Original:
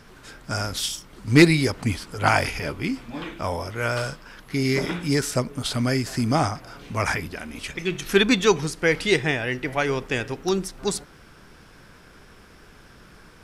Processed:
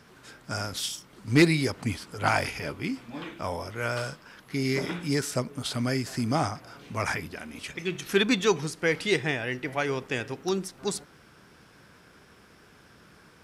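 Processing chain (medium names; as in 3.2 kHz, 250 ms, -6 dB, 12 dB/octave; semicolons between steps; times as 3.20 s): high-pass 84 Hz 12 dB/octave; in parallel at -10 dB: hard clipper -12.5 dBFS, distortion -13 dB; on the sum: trim -7 dB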